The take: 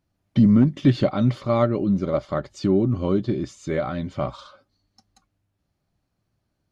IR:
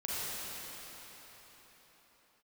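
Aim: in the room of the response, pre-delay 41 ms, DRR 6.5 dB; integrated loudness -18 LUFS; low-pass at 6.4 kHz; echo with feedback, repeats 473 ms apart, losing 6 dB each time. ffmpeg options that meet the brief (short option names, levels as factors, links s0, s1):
-filter_complex "[0:a]lowpass=6400,aecho=1:1:473|946|1419|1892|2365|2838:0.501|0.251|0.125|0.0626|0.0313|0.0157,asplit=2[s0][s1];[1:a]atrim=start_sample=2205,adelay=41[s2];[s1][s2]afir=irnorm=-1:irlink=0,volume=0.237[s3];[s0][s3]amix=inputs=2:normalize=0,volume=1.33"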